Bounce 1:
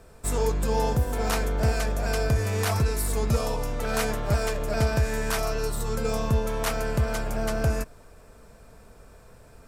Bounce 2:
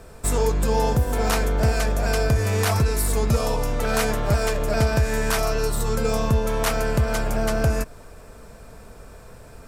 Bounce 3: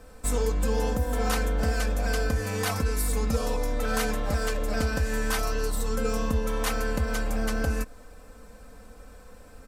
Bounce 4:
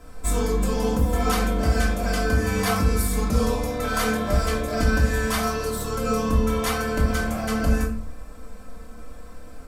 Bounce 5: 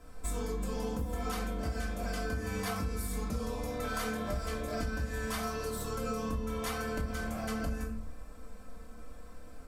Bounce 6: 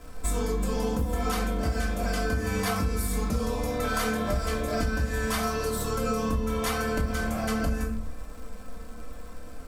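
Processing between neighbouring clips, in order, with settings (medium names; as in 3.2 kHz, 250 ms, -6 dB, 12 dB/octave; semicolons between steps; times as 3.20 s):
compression 1.5:1, threshold -29 dBFS, peak gain reduction 4 dB; trim +7 dB
comb 3.9 ms, depth 78%; trim -7 dB
reverberation RT60 0.55 s, pre-delay 3 ms, DRR -2.5 dB
compression, threshold -23 dBFS, peak gain reduction 9.5 dB; trim -8 dB
crackle 220 per s -51 dBFS; trim +7.5 dB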